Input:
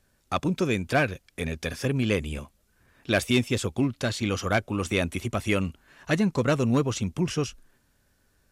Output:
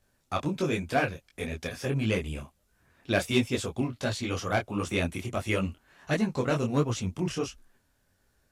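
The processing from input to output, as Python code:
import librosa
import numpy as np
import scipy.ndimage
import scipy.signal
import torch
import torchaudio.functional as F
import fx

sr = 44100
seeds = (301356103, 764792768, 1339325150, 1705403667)

y = fx.peak_eq(x, sr, hz=760.0, db=3.0, octaves=0.77)
y = fx.detune_double(y, sr, cents=50)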